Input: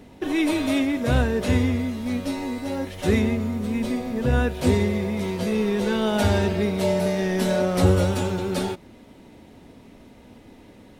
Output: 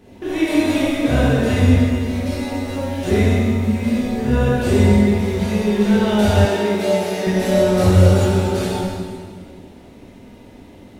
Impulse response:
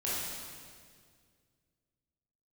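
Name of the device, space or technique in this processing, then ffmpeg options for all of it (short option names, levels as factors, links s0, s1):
stairwell: -filter_complex "[1:a]atrim=start_sample=2205[s0];[0:a][s0]afir=irnorm=-1:irlink=0,asettb=1/sr,asplit=3[s1][s2][s3];[s1]atrim=end=6.454[s4];[s2]atrim=start=6.45:end=7.27,asetpts=PTS-STARTPTS,afade=t=in:d=0.004:c=qsin,afade=t=out:st=0.816:d=0.004:c=qsin,highpass=260[s5];[s3]atrim=start=7.266[s6];[s4][s5]acrossfade=d=0.004:c1=hsin:c2=qsin[s7];[s7][s6]acrossfade=d=0.004:c1=qsin:c2=hsin,volume=0.841"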